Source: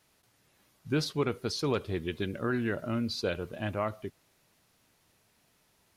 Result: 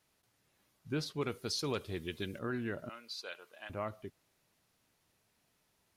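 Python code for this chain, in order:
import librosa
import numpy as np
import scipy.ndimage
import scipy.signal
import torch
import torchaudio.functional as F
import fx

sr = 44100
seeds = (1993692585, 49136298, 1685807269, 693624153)

y = fx.high_shelf(x, sr, hz=3100.0, db=9.0, at=(1.21, 2.39))
y = fx.highpass(y, sr, hz=910.0, slope=12, at=(2.89, 3.7))
y = y * 10.0 ** (-7.0 / 20.0)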